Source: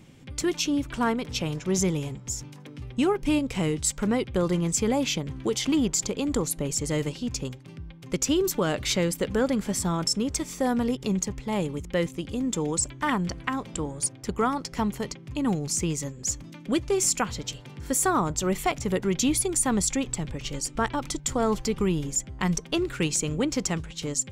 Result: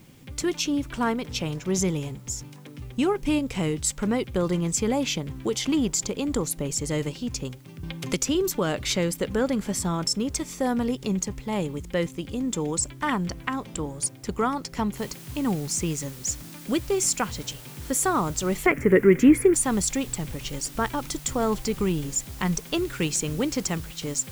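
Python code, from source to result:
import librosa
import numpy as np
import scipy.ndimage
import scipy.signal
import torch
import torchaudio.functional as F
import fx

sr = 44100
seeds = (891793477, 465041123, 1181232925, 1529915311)

y = fx.band_squash(x, sr, depth_pct=70, at=(7.83, 8.35))
y = fx.noise_floor_step(y, sr, seeds[0], at_s=14.97, before_db=-62, after_db=-46, tilt_db=0.0)
y = fx.curve_eq(y, sr, hz=(110.0, 300.0, 430.0, 760.0, 2000.0, 3800.0, 12000.0), db=(0, 10, 12, -4, 13, -18, -5), at=(18.66, 19.54))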